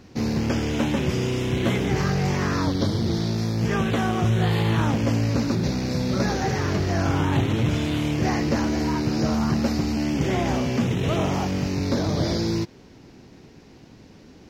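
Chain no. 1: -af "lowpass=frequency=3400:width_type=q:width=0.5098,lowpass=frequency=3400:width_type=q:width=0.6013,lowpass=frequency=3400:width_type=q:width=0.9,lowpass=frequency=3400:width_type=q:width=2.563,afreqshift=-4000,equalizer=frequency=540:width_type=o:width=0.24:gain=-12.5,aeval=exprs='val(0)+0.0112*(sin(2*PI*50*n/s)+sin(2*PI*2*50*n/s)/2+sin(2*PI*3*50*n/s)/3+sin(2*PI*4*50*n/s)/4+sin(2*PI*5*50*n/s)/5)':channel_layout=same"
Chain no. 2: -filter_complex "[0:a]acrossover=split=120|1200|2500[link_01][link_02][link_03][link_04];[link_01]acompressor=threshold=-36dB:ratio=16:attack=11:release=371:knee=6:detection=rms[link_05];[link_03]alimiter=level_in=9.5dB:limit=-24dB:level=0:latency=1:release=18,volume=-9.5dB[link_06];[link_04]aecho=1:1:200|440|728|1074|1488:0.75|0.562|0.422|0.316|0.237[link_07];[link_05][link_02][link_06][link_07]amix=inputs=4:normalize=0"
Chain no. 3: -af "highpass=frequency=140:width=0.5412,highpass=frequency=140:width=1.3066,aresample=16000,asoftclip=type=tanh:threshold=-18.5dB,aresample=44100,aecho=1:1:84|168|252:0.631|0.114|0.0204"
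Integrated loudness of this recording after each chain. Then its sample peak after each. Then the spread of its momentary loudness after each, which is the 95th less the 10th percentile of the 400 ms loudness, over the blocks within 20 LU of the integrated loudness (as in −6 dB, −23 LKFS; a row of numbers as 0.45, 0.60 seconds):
−19.5, −24.5, −25.0 LKFS; −8.0, −9.5, −14.5 dBFS; 3, 3, 3 LU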